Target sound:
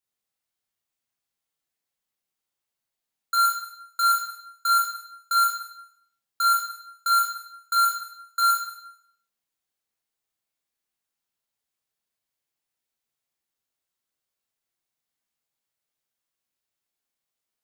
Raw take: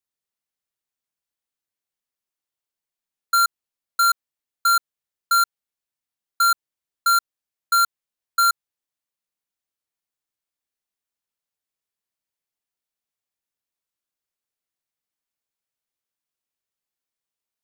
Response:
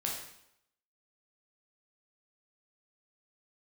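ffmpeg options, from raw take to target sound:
-filter_complex "[0:a]alimiter=limit=-21.5dB:level=0:latency=1[link_01];[1:a]atrim=start_sample=2205[link_02];[link_01][link_02]afir=irnorm=-1:irlink=0"

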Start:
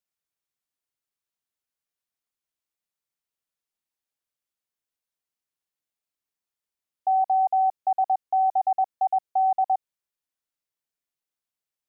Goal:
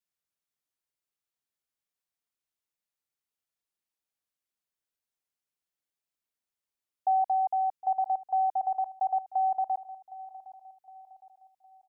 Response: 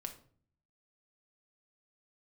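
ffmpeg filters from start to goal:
-af "adynamicequalizer=threshold=0.0158:dfrequency=630:dqfactor=1.4:tfrequency=630:tqfactor=1.4:attack=5:release=100:ratio=0.375:range=3.5:mode=cutabove:tftype=bell,aecho=1:1:762|1524|2286|3048:0.133|0.0573|0.0247|0.0106,volume=-2.5dB"

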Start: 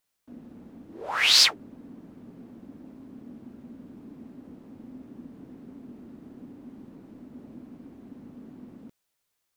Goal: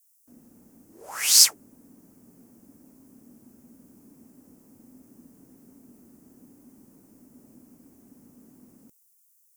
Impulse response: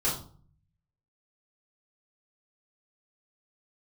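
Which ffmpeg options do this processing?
-af "aexciter=amount=11.4:drive=6.1:freq=5600,volume=-8.5dB"

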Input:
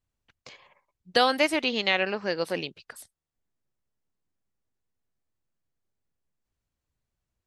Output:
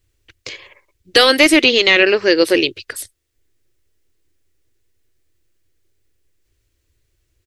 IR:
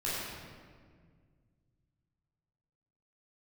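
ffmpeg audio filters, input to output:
-af "firequalizer=gain_entry='entry(110,0);entry(170,-20);entry(330,3);entry(770,-14);entry(1900,-1)':delay=0.05:min_phase=1,apsyclip=21.5dB,volume=-3dB"

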